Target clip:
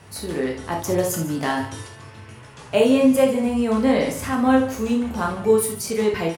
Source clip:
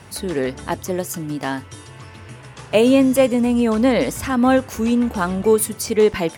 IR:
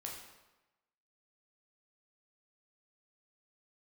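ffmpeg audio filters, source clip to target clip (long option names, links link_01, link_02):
-filter_complex "[0:a]asettb=1/sr,asplit=3[link_01][link_02][link_03];[link_01]atrim=end=0.794[link_04];[link_02]atrim=start=0.79:end=1.88,asetpts=PTS-STARTPTS,afade=type=in:duration=0.004:curve=qsin,afade=type=out:start_time=1.086:duration=0.004:curve=qsin,acontrast=38[link_05];[link_03]atrim=start=1.876[link_06];[link_04][link_05]acrossfade=duration=0.004:curve1=hsin:curve2=qsin[link_07];[link_07][link_06]acrossfade=duration=0.004:curve1=qsin:curve2=hsin,aecho=1:1:145:0.178[link_08];[1:a]atrim=start_sample=2205,atrim=end_sample=3969[link_09];[link_08][link_09]afir=irnorm=-1:irlink=0"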